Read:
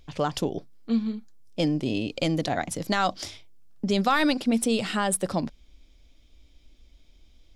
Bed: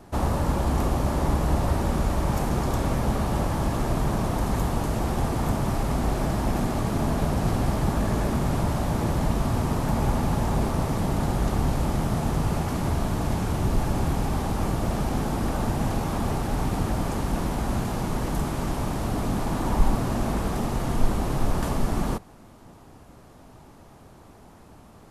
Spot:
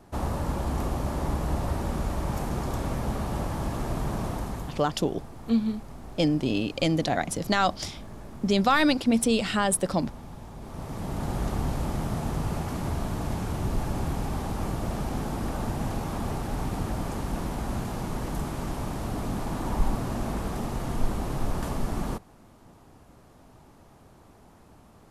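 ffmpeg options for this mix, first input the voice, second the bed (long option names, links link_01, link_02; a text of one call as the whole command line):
ffmpeg -i stem1.wav -i stem2.wav -filter_complex "[0:a]adelay=4600,volume=1dB[link_01];[1:a]volume=9dB,afade=type=out:start_time=4.28:duration=0.57:silence=0.211349,afade=type=in:start_time=10.6:duration=0.77:silence=0.199526[link_02];[link_01][link_02]amix=inputs=2:normalize=0" out.wav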